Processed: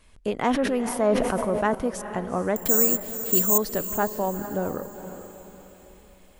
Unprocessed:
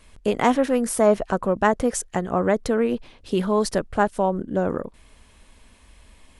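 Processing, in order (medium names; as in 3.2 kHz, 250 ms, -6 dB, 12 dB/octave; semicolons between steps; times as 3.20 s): 2.56–3.58 s: careless resampling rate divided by 6×, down none, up zero stuff; on a send: echo that smears into a reverb 454 ms, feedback 42%, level -11 dB; on the sum: dynamic bell 7.9 kHz, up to -7 dB, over -47 dBFS, Q 1.3; 0.47–1.75 s: decay stretcher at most 38 dB/s; trim -5 dB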